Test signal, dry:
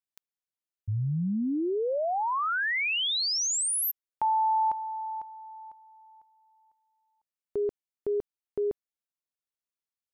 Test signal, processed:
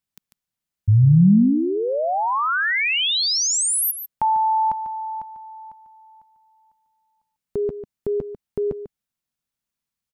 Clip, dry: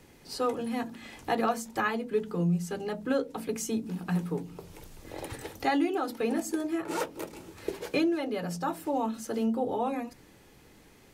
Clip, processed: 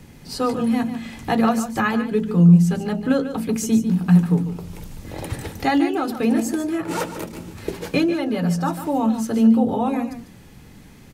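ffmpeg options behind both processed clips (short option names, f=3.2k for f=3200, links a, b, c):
-filter_complex "[0:a]lowshelf=f=270:t=q:w=1.5:g=7,asplit=2[a][b];[b]aecho=0:1:146:0.282[c];[a][c]amix=inputs=2:normalize=0,volume=7dB"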